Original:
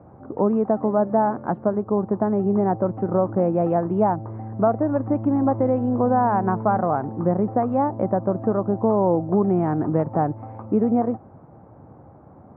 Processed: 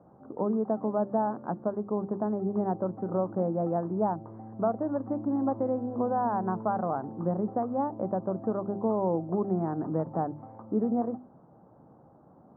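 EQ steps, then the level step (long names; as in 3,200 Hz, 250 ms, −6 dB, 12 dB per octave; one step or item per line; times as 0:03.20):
low-pass filter 1,600 Hz 24 dB per octave
low shelf with overshoot 130 Hz −6 dB, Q 1.5
mains-hum notches 50/100/150/200/250/300/350/400 Hz
−8.5 dB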